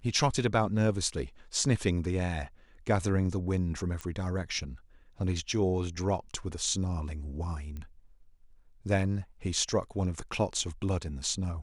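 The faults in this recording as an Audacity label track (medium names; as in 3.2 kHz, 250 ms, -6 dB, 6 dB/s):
4.010000	4.010000	pop -22 dBFS
7.770000	7.770000	pop -28 dBFS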